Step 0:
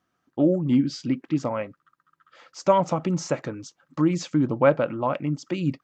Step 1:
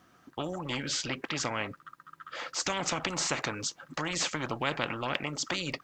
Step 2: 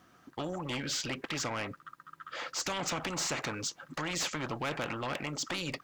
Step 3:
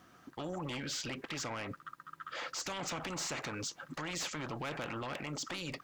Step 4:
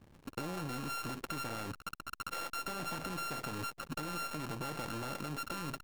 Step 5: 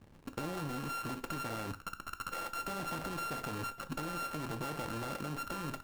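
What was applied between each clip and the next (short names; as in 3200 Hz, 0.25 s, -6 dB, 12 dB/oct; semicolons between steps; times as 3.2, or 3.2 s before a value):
spectral compressor 4:1; gain -4 dB
soft clip -27 dBFS, distortion -12 dB
limiter -33.5 dBFS, peak gain reduction 6.5 dB; gain +1 dB
sample sorter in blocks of 32 samples; compressor 6:1, threshold -44 dBFS, peak gain reduction 8 dB; backlash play -49 dBFS; gain +8 dB
median filter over 15 samples; on a send at -10.5 dB: reverb RT60 0.35 s, pre-delay 8 ms; on the sum: gain +1 dB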